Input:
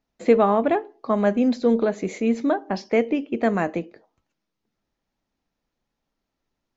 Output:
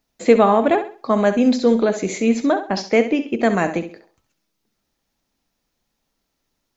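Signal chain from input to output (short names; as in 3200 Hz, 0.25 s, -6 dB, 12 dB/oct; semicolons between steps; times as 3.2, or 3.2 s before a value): high shelf 3900 Hz +11 dB; flutter echo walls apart 11.4 m, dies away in 0.37 s; gain +3.5 dB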